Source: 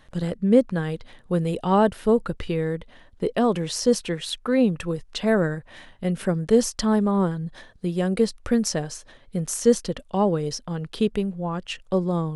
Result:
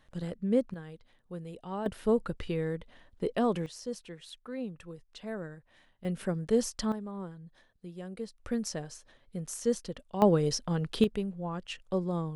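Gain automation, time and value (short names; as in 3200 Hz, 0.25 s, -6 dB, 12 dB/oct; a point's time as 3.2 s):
-10 dB
from 0.74 s -18 dB
from 1.86 s -7 dB
from 3.66 s -18 dB
from 6.05 s -8.5 dB
from 6.92 s -18.5 dB
from 8.39 s -11 dB
from 10.22 s -1 dB
from 11.04 s -8 dB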